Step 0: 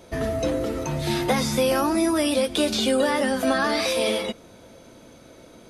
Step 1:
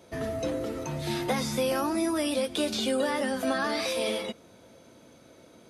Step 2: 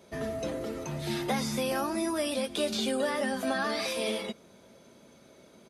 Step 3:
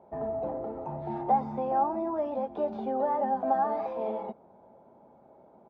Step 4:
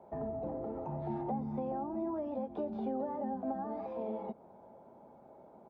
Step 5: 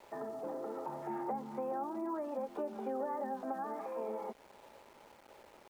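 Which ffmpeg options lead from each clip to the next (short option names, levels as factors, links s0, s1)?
-af "highpass=76,volume=0.501"
-af "aecho=1:1:5:0.38,volume=0.794"
-af "lowpass=f=830:t=q:w=6.6,volume=0.596"
-filter_complex "[0:a]acrossover=split=370[s0][s1];[s1]acompressor=threshold=0.01:ratio=10[s2];[s0][s2]amix=inputs=2:normalize=0"
-af "highpass=430,equalizer=f=690:t=q:w=4:g=-9,equalizer=f=1300:t=q:w=4:g=5,equalizer=f=1800:t=q:w=4:g=5,lowpass=f=2700:w=0.5412,lowpass=f=2700:w=1.3066,aeval=exprs='val(0)*gte(abs(val(0)),0.001)':c=same,volume=1.58"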